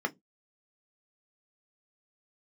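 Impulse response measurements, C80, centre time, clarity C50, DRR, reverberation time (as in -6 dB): 36.0 dB, 4 ms, 28.0 dB, 5.5 dB, no single decay rate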